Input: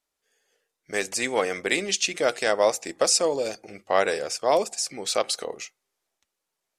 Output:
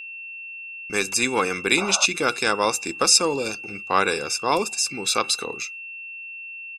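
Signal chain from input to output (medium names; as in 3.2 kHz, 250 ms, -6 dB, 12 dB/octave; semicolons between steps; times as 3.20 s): gate with hold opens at -40 dBFS; comb 0.8 ms, depth 78%; painted sound noise, 1.77–2.06 s, 520–1500 Hz -34 dBFS; whistle 2.7 kHz -37 dBFS; trim +3 dB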